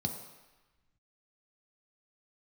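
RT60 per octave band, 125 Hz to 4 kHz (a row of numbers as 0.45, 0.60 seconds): 1.1, 1.0, 1.0, 1.2, 1.3, 1.1 seconds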